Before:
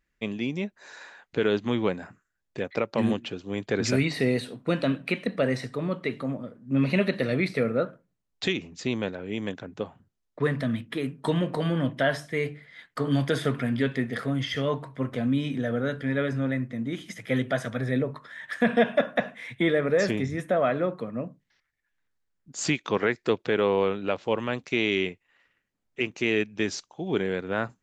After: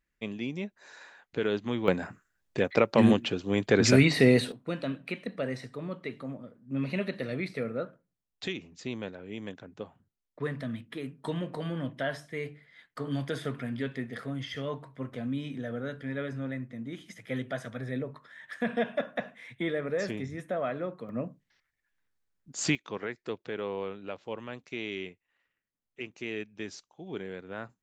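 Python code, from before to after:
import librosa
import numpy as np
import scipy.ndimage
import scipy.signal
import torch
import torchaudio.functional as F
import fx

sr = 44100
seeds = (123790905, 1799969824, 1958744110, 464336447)

y = fx.gain(x, sr, db=fx.steps((0.0, -5.0), (1.88, 4.0), (4.52, -8.0), (21.09, -1.5), (22.75, -11.5)))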